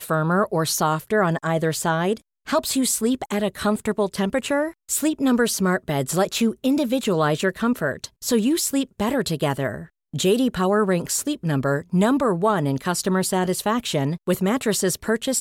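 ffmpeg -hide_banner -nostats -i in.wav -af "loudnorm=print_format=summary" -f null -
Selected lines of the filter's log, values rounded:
Input Integrated:    -22.2 LUFS
Input True Peak:      -8.2 dBTP
Input LRA:             1.1 LU
Input Threshold:     -32.2 LUFS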